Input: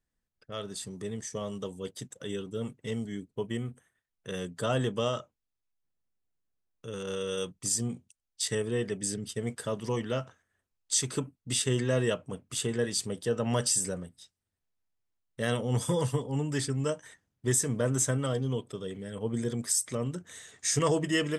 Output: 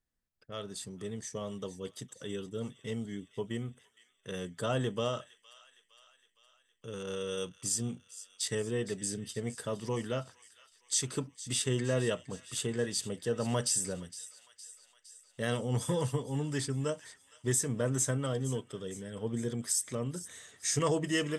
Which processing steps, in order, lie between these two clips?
delay with a high-pass on its return 462 ms, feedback 60%, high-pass 1,800 Hz, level −15 dB
level −3 dB

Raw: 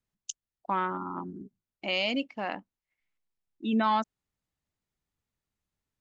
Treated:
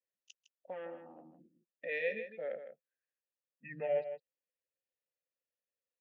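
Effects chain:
pitch glide at a constant tempo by −10.5 semitones starting unshifted
formant filter e
slap from a distant wall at 27 metres, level −10 dB
level +2.5 dB

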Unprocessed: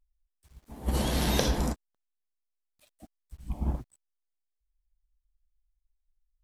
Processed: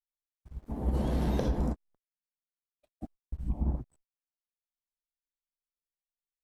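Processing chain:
noise gate −59 dBFS, range −46 dB
tilt shelving filter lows +9.5 dB, about 1,500 Hz
downward compressor 2.5 to 1, threshold −33 dBFS, peak gain reduction 13.5 dB
level +1.5 dB

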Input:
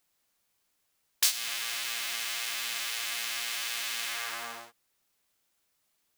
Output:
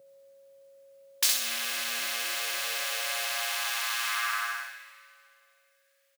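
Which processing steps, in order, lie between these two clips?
repeating echo 64 ms, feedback 41%, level −3 dB
steady tone 550 Hz −54 dBFS
convolution reverb RT60 2.4 s, pre-delay 117 ms, DRR 13.5 dB
high-pass filter sweep 140 Hz → 1,700 Hz, 0:00.93–0:04.84

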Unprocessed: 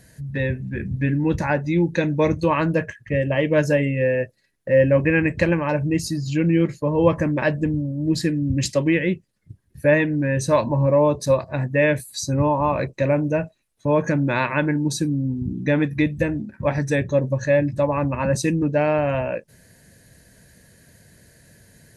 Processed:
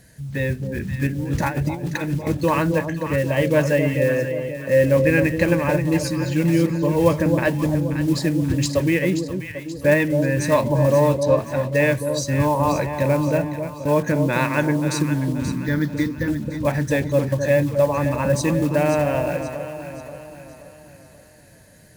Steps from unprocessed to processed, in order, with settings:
one scale factor per block 5 bits
0:01.07–0:02.27: compressor whose output falls as the input rises −24 dBFS, ratio −0.5
0:11.23–0:11.72: high-frequency loss of the air 120 metres
0:15.58–0:16.28: phaser with its sweep stopped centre 2,600 Hz, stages 6
on a send: delay that swaps between a low-pass and a high-pass 265 ms, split 860 Hz, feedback 67%, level −6 dB

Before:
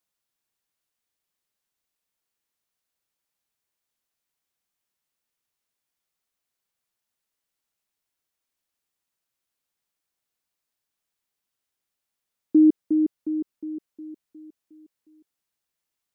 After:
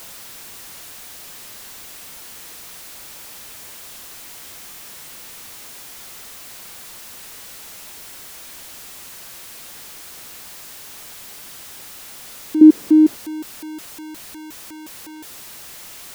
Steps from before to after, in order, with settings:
converter with a step at zero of −26.5 dBFS
0:12.61–0:13.16: parametric band 300 Hz +13.5 dB 1.6 octaves
level −5 dB

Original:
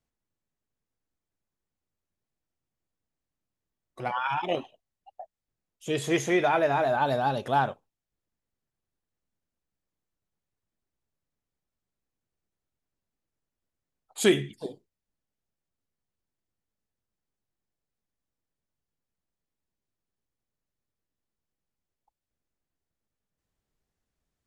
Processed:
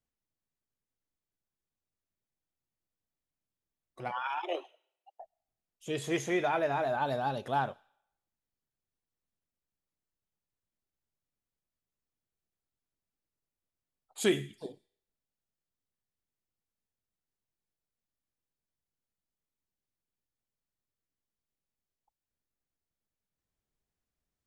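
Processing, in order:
0:04.22–0:05.20: Butterworth high-pass 320 Hz 72 dB per octave
on a send: first difference + convolution reverb RT60 0.85 s, pre-delay 75 ms, DRR 29 dB
on the sum: level −6 dB

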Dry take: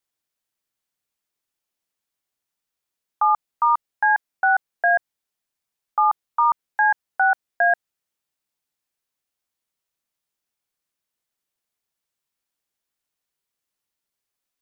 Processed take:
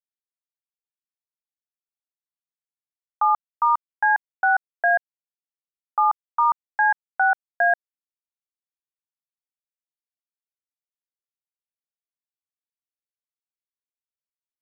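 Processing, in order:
bit reduction 10 bits
level −1 dB

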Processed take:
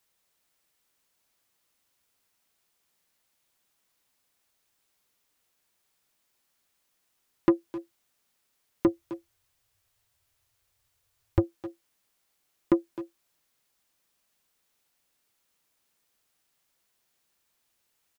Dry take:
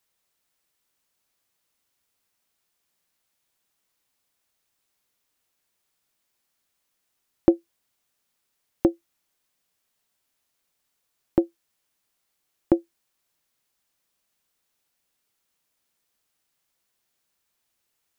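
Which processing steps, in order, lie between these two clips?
0:08.87–0:11.44: low shelf with overshoot 140 Hz +11 dB, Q 3
soft clipping −15 dBFS, distortion −9 dB
far-end echo of a speakerphone 260 ms, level −8 dB
level +1.5 dB

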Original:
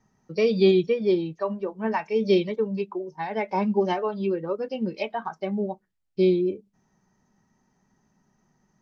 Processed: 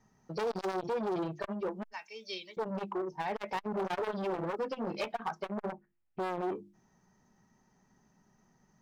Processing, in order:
mains-hum notches 50/100/150/200/250/300/350 Hz
0:01.89–0:02.57: first difference
0:03.81–0:04.53: transient designer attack 0 dB, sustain +4 dB
0:05.69–0:06.41: Butterworth low-pass 2,700 Hz
hard clipping −26.5 dBFS, distortion −5 dB
saturating transformer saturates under 480 Hz

